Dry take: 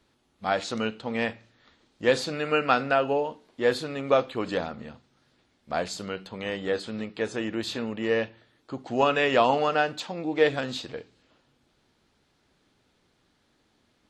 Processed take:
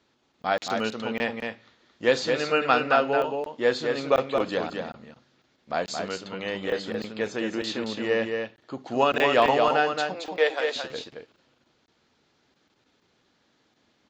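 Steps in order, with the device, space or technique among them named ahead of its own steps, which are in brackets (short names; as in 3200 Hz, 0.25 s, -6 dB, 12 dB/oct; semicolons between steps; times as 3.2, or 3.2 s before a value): 10.14–10.76 HPF 430 Hz 24 dB/oct; call with lost packets (HPF 170 Hz 6 dB/oct; downsampling 16000 Hz; packet loss packets of 20 ms random); echo 0.222 s -5 dB; gain +1 dB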